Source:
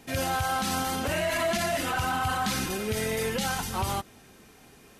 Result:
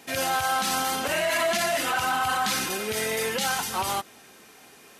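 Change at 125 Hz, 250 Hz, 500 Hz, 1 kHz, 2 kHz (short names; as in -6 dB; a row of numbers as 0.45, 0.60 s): -8.5, -3.0, +1.5, +3.0, +4.0 dB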